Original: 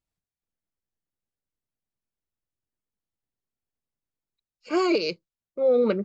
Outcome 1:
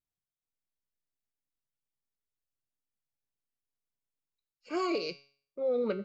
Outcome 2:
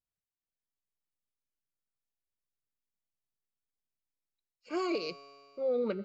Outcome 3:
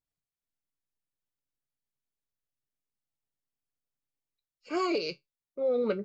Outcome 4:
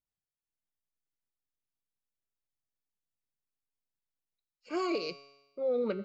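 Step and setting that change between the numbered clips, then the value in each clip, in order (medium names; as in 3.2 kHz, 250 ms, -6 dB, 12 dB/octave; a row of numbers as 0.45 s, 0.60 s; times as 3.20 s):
feedback comb, decay: 0.48 s, 2.2 s, 0.16 s, 1 s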